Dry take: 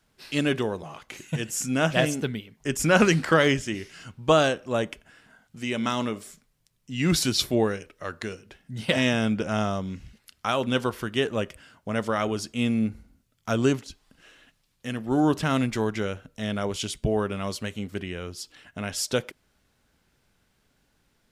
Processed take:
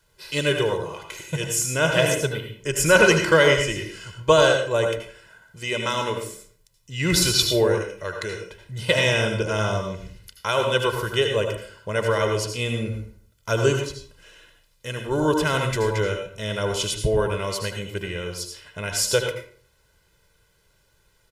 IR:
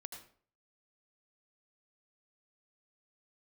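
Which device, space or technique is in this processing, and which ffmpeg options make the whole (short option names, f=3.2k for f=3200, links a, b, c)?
microphone above a desk: -filter_complex "[0:a]aecho=1:1:2:0.83[a];[1:a]atrim=start_sample=2205[b];[a][b]afir=irnorm=-1:irlink=0,highshelf=f=4.9k:g=4.5,volume=6dB"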